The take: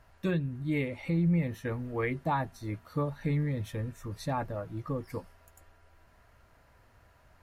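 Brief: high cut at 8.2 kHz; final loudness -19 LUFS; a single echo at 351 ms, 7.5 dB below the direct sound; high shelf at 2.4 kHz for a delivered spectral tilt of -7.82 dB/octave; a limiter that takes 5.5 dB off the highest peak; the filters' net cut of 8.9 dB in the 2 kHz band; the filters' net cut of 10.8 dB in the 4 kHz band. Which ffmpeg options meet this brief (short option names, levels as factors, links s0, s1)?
-af "lowpass=8200,equalizer=f=2000:t=o:g=-7.5,highshelf=f=2400:g=-3,equalizer=f=4000:t=o:g=-8,alimiter=level_in=1.19:limit=0.0631:level=0:latency=1,volume=0.841,aecho=1:1:351:0.422,volume=6.68"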